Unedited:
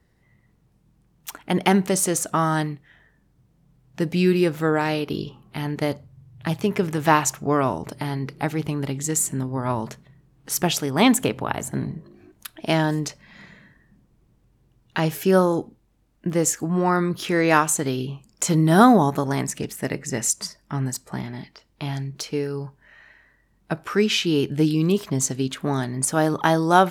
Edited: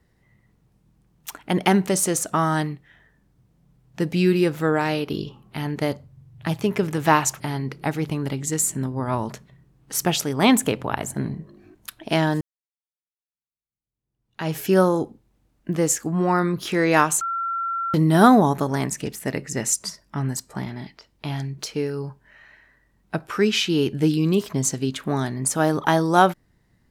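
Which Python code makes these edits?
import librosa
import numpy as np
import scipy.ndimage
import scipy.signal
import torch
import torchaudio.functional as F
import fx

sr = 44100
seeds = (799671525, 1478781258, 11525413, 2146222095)

y = fx.edit(x, sr, fx.cut(start_s=7.4, length_s=0.57),
    fx.fade_in_span(start_s=12.98, length_s=2.15, curve='exp'),
    fx.bleep(start_s=17.78, length_s=0.73, hz=1360.0, db=-23.0), tone=tone)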